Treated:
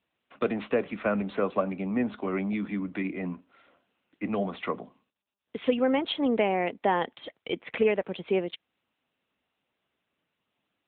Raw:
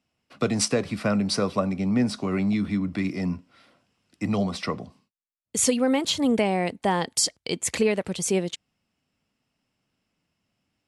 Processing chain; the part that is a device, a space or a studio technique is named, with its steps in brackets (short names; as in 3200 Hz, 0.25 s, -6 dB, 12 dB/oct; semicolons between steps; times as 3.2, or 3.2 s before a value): telephone (BPF 280–3500 Hz; AMR-NB 10.2 kbps 8000 Hz)